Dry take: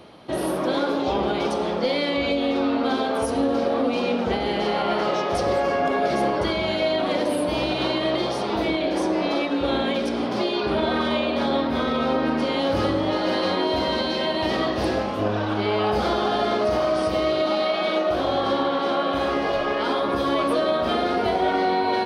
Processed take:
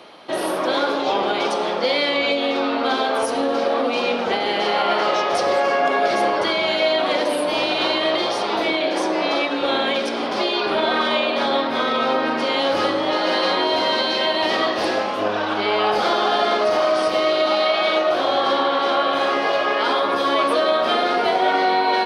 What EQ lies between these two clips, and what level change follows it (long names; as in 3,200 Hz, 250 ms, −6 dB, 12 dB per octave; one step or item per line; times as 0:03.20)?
meter weighting curve A
+5.5 dB